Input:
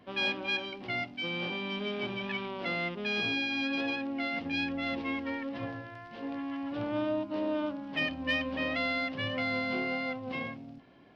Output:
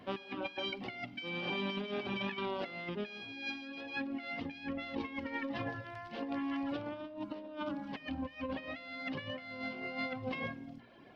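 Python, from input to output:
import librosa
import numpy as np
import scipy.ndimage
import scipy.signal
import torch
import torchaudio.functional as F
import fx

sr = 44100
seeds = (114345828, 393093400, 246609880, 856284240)

y = fx.dereverb_blind(x, sr, rt60_s=0.77)
y = fx.hum_notches(y, sr, base_hz=60, count=7)
y = fx.over_compress(y, sr, threshold_db=-39.0, ratio=-0.5)
y = fx.rev_schroeder(y, sr, rt60_s=1.7, comb_ms=38, drr_db=19.5)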